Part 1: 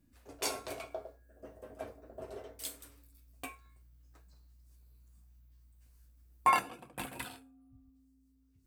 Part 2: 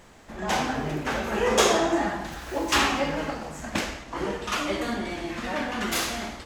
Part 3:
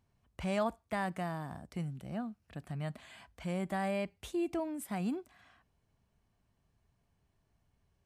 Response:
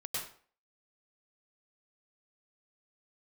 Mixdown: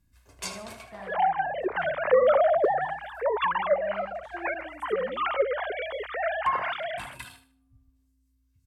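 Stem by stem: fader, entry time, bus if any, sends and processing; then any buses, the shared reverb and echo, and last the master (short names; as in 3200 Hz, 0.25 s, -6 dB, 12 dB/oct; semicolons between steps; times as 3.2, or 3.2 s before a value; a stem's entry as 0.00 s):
+1.0 dB, 0.00 s, no send, echo send -12.5 dB, bell 480 Hz -14.5 dB 1 oct; comb 1.9 ms, depth 51%
+1.0 dB, 0.70 s, no send, no echo send, sine-wave speech; notch 2600 Hz, Q 7.5
-11.5 dB, 0.00 s, no send, echo send -4 dB, Wiener smoothing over 9 samples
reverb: off
echo: feedback echo 76 ms, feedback 30%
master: treble ducked by the level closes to 1200 Hz, closed at -19.5 dBFS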